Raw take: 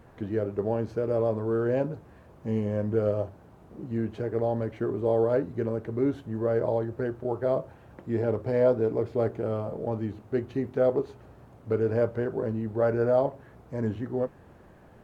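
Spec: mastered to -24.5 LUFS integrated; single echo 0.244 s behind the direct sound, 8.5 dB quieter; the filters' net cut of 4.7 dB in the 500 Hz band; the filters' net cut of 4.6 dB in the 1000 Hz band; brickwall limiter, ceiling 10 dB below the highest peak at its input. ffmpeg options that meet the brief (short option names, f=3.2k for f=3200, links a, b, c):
-af "equalizer=f=500:t=o:g=-4.5,equalizer=f=1k:t=o:g=-4.5,alimiter=level_in=2.5dB:limit=-24dB:level=0:latency=1,volume=-2.5dB,aecho=1:1:244:0.376,volume=12dB"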